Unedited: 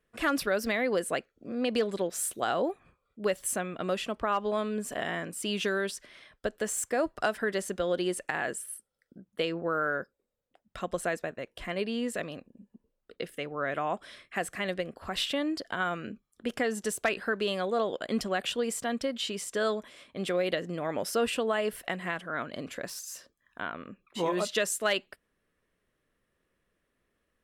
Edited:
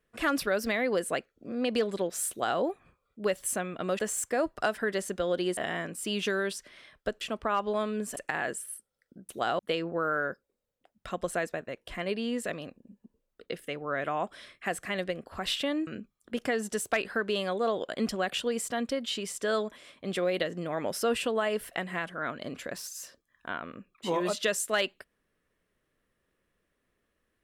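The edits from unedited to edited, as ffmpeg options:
-filter_complex "[0:a]asplit=8[a][b][c][d][e][f][g][h];[a]atrim=end=3.992[i];[b]atrim=start=6.588:end=8.172[j];[c]atrim=start=4.948:end=6.592[k];[d]atrim=start=3.988:end=4.952[l];[e]atrim=start=8.168:end=9.292[m];[f]atrim=start=2.298:end=2.602[n];[g]atrim=start=9.288:end=15.572[o];[h]atrim=start=15.988[p];[i][j]acrossfade=d=0.004:c1=hsin:c2=hsin[q];[q][k]acrossfade=d=0.004:c1=hsin:c2=hsin[r];[r][l]acrossfade=d=0.004:c1=hsin:c2=hsin[s];[s][m]acrossfade=d=0.004:c1=hsin:c2=hsin[t];[t][n]acrossfade=d=0.004:c1=hsin:c2=hsin[u];[u][o]acrossfade=d=0.004:c1=hsin:c2=hsin[v];[v][p]acrossfade=d=0.004:c1=hsin:c2=hsin"

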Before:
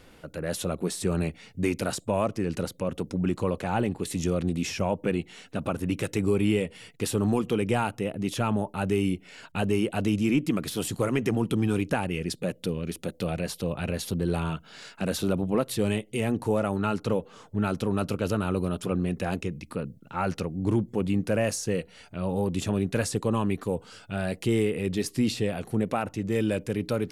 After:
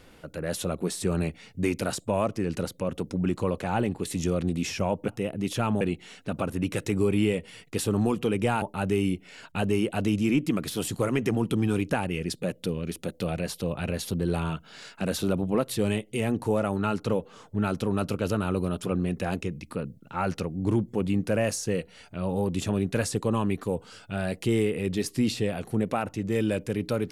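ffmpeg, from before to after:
-filter_complex "[0:a]asplit=4[a][b][c][d];[a]atrim=end=5.082[e];[b]atrim=start=7.888:end=8.622[f];[c]atrim=start=5.078:end=7.892[g];[d]atrim=start=8.618[h];[e][f]acrossfade=d=0.004:c1=hsin:c2=hsin[i];[i][g]acrossfade=d=0.004:c1=hsin:c2=hsin[j];[j][h]acrossfade=d=0.004:c1=hsin:c2=hsin"

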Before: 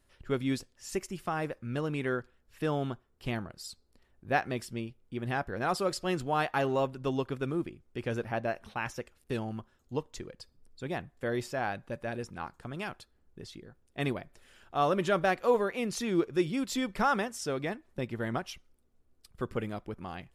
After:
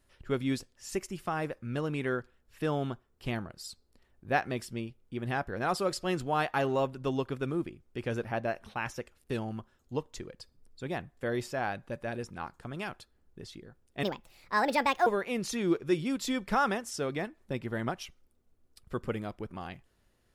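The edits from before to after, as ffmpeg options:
-filter_complex "[0:a]asplit=3[a][b][c];[a]atrim=end=14.034[d];[b]atrim=start=14.03:end=15.54,asetpts=PTS-STARTPTS,asetrate=64386,aresample=44100,atrim=end_sample=45610,asetpts=PTS-STARTPTS[e];[c]atrim=start=15.536[f];[d][e]acrossfade=d=0.004:c1=hsin:c2=hsin[g];[g][f]acrossfade=d=0.004:c1=hsin:c2=hsin"

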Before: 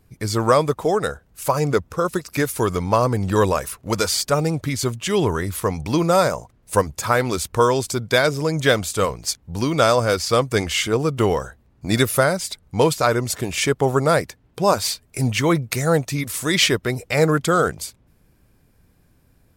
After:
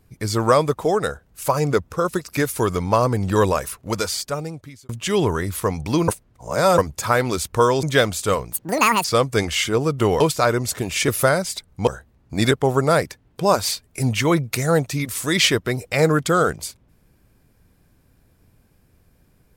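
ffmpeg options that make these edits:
-filter_complex "[0:a]asplit=11[a][b][c][d][e][f][g][h][i][j][k];[a]atrim=end=4.89,asetpts=PTS-STARTPTS,afade=t=out:st=3.68:d=1.21[l];[b]atrim=start=4.89:end=6.082,asetpts=PTS-STARTPTS,afade=t=in:d=0.004:c=hsin[m];[c]atrim=start=6.078:end=6.782,asetpts=PTS-STARTPTS,areverse[n];[d]atrim=start=6.778:end=7.832[o];[e]atrim=start=8.538:end=9.234[p];[f]atrim=start=9.23:end=10.23,asetpts=PTS-STARTPTS,asetrate=84231,aresample=44100,atrim=end_sample=23089,asetpts=PTS-STARTPTS[q];[g]atrim=start=10.226:end=11.392[r];[h]atrim=start=12.818:end=13.702[s];[i]atrim=start=12.028:end=12.822[t];[j]atrim=start=11.388:end=12.032[u];[k]atrim=start=13.698[v];[l][m]concat=n=2:v=0:a=1[w];[w][n]acrossfade=d=0.004:c1=hsin:c2=hsin[x];[x][o]acrossfade=d=0.004:c1=hsin:c2=hsin[y];[y][p]acrossfade=d=0.004:c1=hsin:c2=hsin[z];[z][q]acrossfade=d=0.004:c1=hsin:c2=hsin[aa];[aa][r]acrossfade=d=0.004:c1=hsin:c2=hsin[ab];[ab][s]acrossfade=d=0.004:c1=hsin:c2=hsin[ac];[ac][t]acrossfade=d=0.004:c1=hsin:c2=hsin[ad];[ad][u]acrossfade=d=0.004:c1=hsin:c2=hsin[ae];[ae][v]acrossfade=d=0.004:c1=hsin:c2=hsin"

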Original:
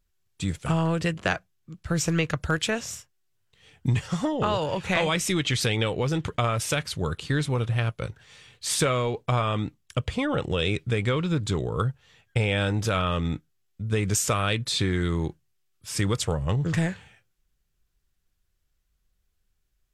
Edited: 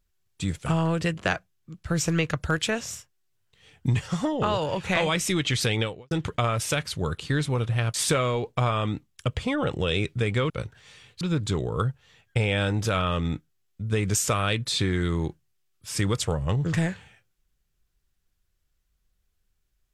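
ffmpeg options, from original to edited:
-filter_complex "[0:a]asplit=5[a][b][c][d][e];[a]atrim=end=6.11,asetpts=PTS-STARTPTS,afade=t=out:st=5.81:d=0.3:c=qua[f];[b]atrim=start=6.11:end=7.942,asetpts=PTS-STARTPTS,afade=t=in:d=0.004:c=hsin[g];[c]atrim=start=8.648:end=11.212[h];[d]atrim=start=7.938:end=8.652[i];[e]atrim=start=11.208[j];[f][g]concat=n=2:v=0:a=1[k];[k][h]acrossfade=d=0.004:c1=hsin:c2=hsin[l];[l][i]acrossfade=d=0.004:c1=hsin:c2=hsin[m];[m][j]acrossfade=d=0.004:c1=hsin:c2=hsin"

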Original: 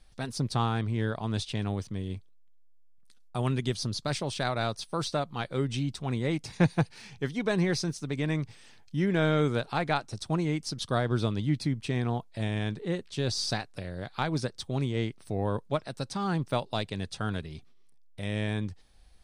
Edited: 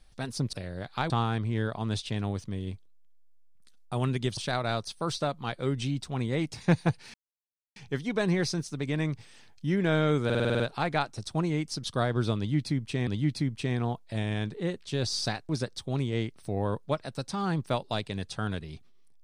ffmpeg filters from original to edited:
-filter_complex "[0:a]asplit=14[a][b][c][d][e][f][g][h][i][j][k][l][m][n];[a]atrim=end=0.532[o];[b]atrim=start=13.738:end=14.312[p];[c]atrim=start=0.528:end=3.802[q];[d]atrim=start=4.288:end=7.06,asetpts=PTS-STARTPTS,afade=t=out:st=2.768:d=0.004:c=hsin,apad=pad_dur=0.62[r];[e]atrim=start=7.06:end=9.602,asetpts=PTS-STARTPTS,afade=t=in:d=0.004:c=hsin[s];[f]atrim=start=9.548:end=9.602[t];[g]atrim=start=9.548:end=9.602[u];[h]atrim=start=9.548:end=9.602[v];[i]atrim=start=9.548:end=9.602[w];[j]atrim=start=9.548:end=9.602[x];[k]atrim=start=9.548:end=9.602[y];[l]atrim=start=9.548:end=12.022[z];[m]atrim=start=11.318:end=13.742[aa];[n]atrim=start=14.308[ab];[o][p]acrossfade=d=0.004:c1=hsin:c2=hsin[ac];[ac][q]acrossfade=d=0.004:c1=hsin:c2=hsin[ad];[r][s]concat=n=2:v=0:a=1[ae];[ad][ae]acrossfade=d=0.004:c1=hsin:c2=hsin[af];[af][t]acrossfade=d=0.004:c1=hsin:c2=hsin[ag];[ag][u]acrossfade=d=0.004:c1=hsin:c2=hsin[ah];[ah][v]acrossfade=d=0.004:c1=hsin:c2=hsin[ai];[ai][w]acrossfade=d=0.004:c1=hsin:c2=hsin[aj];[aj][x]acrossfade=d=0.004:c1=hsin:c2=hsin[ak];[ak][y]acrossfade=d=0.004:c1=hsin:c2=hsin[al];[al][z]acrossfade=d=0.004:c1=hsin:c2=hsin[am];[am][aa]acrossfade=d=0.004:c1=hsin:c2=hsin[an];[an][ab]acrossfade=d=0.004:c1=hsin:c2=hsin"

